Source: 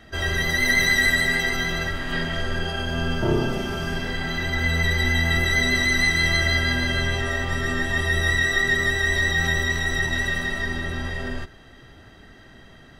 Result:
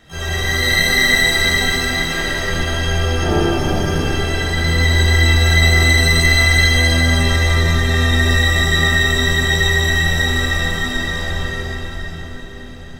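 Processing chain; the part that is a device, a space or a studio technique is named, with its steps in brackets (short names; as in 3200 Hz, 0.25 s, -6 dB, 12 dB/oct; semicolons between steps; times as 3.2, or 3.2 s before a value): shimmer-style reverb (harmoniser +12 st -6 dB; reverb RT60 5.1 s, pre-delay 16 ms, DRR -7.5 dB); gain -2.5 dB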